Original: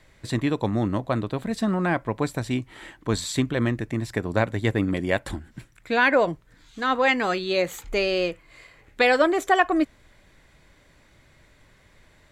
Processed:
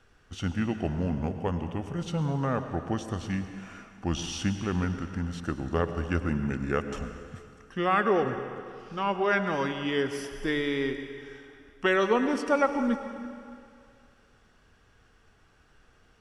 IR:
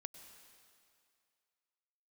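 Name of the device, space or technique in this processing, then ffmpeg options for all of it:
slowed and reverbed: -filter_complex "[0:a]asetrate=33516,aresample=44100[link_01];[1:a]atrim=start_sample=2205[link_02];[link_01][link_02]afir=irnorm=-1:irlink=0"

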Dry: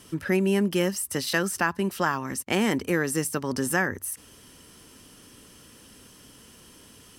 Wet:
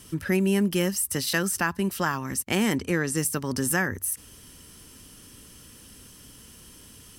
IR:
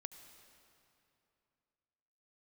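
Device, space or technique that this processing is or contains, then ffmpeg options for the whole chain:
smiley-face EQ: -filter_complex "[0:a]lowshelf=frequency=110:gain=8.5,equalizer=frequency=610:width_type=o:width=2.2:gain=-3,highshelf=frequency=7800:gain=6.5,asettb=1/sr,asplit=3[link_01][link_02][link_03];[link_01]atrim=end=2.754[link_04];[link_02]atrim=start=2.75:end=3.17,asetpts=PTS-STARTPTS,afade=type=in:duration=0.004:curve=qsin,afade=type=out:start_time=0.416:duration=0.004:curve=qsin,lowpass=8500[link_05];[link_03]atrim=start=3.166[link_06];[link_04][link_05]acrossfade=duration=0.004:curve1=hsin:curve2=qsin[link_07];[link_07][link_06]acrossfade=duration=0.004:curve1=qsin:curve2=hsin"

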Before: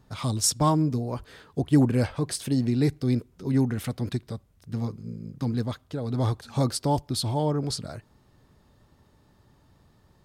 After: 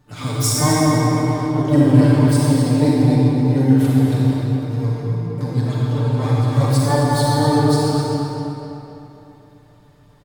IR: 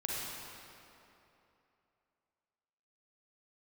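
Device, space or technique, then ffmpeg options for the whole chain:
shimmer-style reverb: -filter_complex "[0:a]asplit=2[link_01][link_02];[link_02]asetrate=88200,aresample=44100,atempo=0.5,volume=-9dB[link_03];[link_01][link_03]amix=inputs=2:normalize=0[link_04];[1:a]atrim=start_sample=2205[link_05];[link_04][link_05]afir=irnorm=-1:irlink=0,aecho=1:1:6.8:0.65,asplit=2[link_06][link_07];[link_07]adelay=257,lowpass=frequency=4600:poles=1,volume=-5dB,asplit=2[link_08][link_09];[link_09]adelay=257,lowpass=frequency=4600:poles=1,volume=0.44,asplit=2[link_10][link_11];[link_11]adelay=257,lowpass=frequency=4600:poles=1,volume=0.44,asplit=2[link_12][link_13];[link_13]adelay=257,lowpass=frequency=4600:poles=1,volume=0.44,asplit=2[link_14][link_15];[link_15]adelay=257,lowpass=frequency=4600:poles=1,volume=0.44[link_16];[link_06][link_08][link_10][link_12][link_14][link_16]amix=inputs=6:normalize=0,volume=1dB"

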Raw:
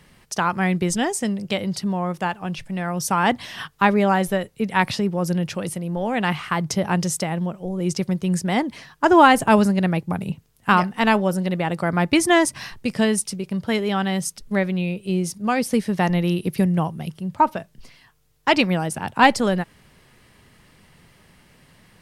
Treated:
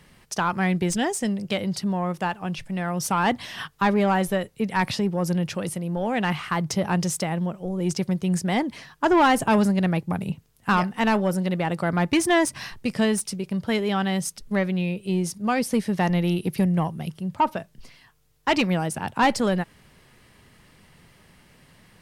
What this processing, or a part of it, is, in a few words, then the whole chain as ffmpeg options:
saturation between pre-emphasis and de-emphasis: -af "highshelf=frequency=5100:gain=11.5,asoftclip=type=tanh:threshold=-11.5dB,highshelf=frequency=5100:gain=-11.5,volume=-1dB"

